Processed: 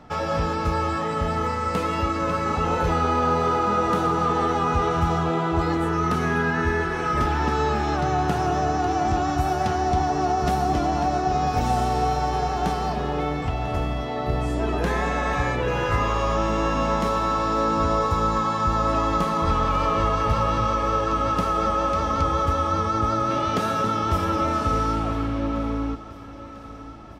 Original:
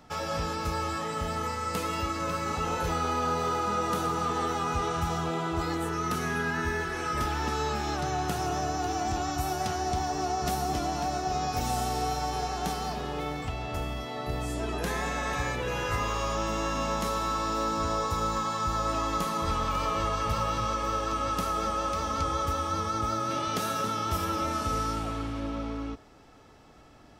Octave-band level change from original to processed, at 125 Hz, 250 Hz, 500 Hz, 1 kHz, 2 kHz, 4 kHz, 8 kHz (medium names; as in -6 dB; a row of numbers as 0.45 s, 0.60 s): +8.0 dB, +8.0 dB, +8.0 dB, +7.0 dB, +5.5 dB, +1.0 dB, -2.5 dB